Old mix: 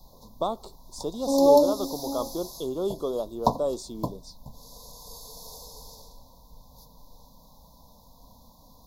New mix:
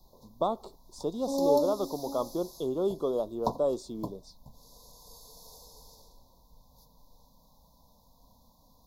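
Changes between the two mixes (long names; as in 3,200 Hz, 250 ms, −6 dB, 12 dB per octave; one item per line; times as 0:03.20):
speech: add high-shelf EQ 3,000 Hz −9 dB
background −8.0 dB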